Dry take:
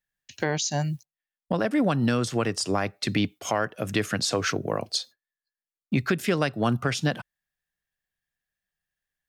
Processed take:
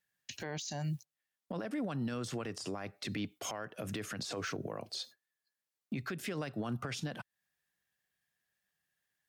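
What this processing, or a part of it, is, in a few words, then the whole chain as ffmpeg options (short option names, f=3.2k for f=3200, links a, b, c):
podcast mastering chain: -af "highpass=98,deesser=0.7,acompressor=threshold=-39dB:ratio=2.5,alimiter=level_in=8.5dB:limit=-24dB:level=0:latency=1:release=39,volume=-8.5dB,volume=3.5dB" -ar 44100 -c:a libmp3lame -b:a 96k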